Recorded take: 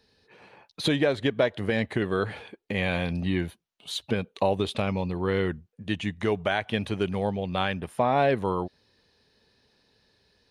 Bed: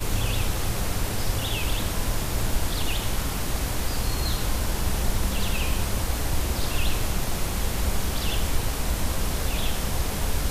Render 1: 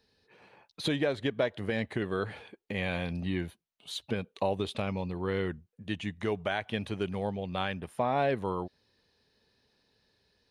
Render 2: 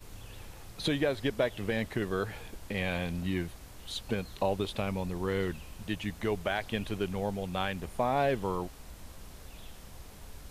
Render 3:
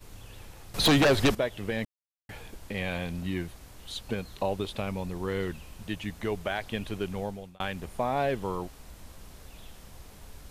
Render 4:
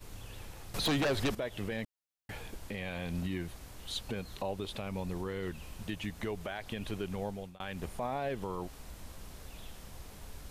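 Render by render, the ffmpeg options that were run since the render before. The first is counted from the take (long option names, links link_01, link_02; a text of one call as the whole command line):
ffmpeg -i in.wav -af "volume=-5.5dB" out.wav
ffmpeg -i in.wav -i bed.wav -filter_complex "[1:a]volume=-22dB[link_01];[0:a][link_01]amix=inputs=2:normalize=0" out.wav
ffmpeg -i in.wav -filter_complex "[0:a]asettb=1/sr,asplit=3[link_01][link_02][link_03];[link_01]atrim=end=0.744[link_04];[link_02]atrim=start=0.74:end=1.35,asetpts=PTS-STARTPTS,afade=type=in:duration=0.004:curve=qsin,afade=type=out:start_time=0.606:duration=0.004:curve=qsin,aeval=exprs='0.141*sin(PI/2*3.16*val(0)/0.141)':channel_layout=same[link_05];[link_03]atrim=start=1.346[link_06];[link_04][link_05]acrossfade=duration=0.004:curve1=hsin:curve2=qsin[link_07];[link_07][link_06]acrossfade=duration=0.004:curve1=qsin:curve2=hsin,asplit=4[link_08][link_09][link_10][link_11];[link_08]atrim=end=1.85,asetpts=PTS-STARTPTS,afade=type=out:start_time=1.846:duration=0.004:curve=hsin[link_12];[link_09]atrim=start=1.85:end=2.29,asetpts=PTS-STARTPTS,volume=0[link_13];[link_10]atrim=start=2.29:end=7.6,asetpts=PTS-STARTPTS,afade=type=in:duration=0.004:curve=hsin,afade=type=out:start_time=4.91:duration=0.4[link_14];[link_11]atrim=start=7.6,asetpts=PTS-STARTPTS,afade=type=in:duration=0.004:curve=hsin[link_15];[link_12][link_13][link_14][link_15]concat=n=4:v=0:a=1" out.wav
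ffmpeg -i in.wav -af "alimiter=level_in=2dB:limit=-24dB:level=0:latency=1:release=139,volume=-2dB" out.wav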